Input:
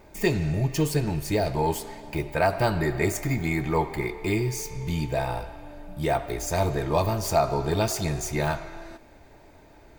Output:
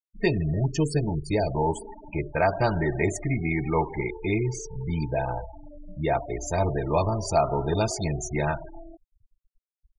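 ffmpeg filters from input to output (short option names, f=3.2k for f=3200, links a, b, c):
-af "afftfilt=real='re*gte(hypot(re,im),0.0355)':imag='im*gte(hypot(re,im),0.0355)':win_size=1024:overlap=0.75,aresample=22050,aresample=44100"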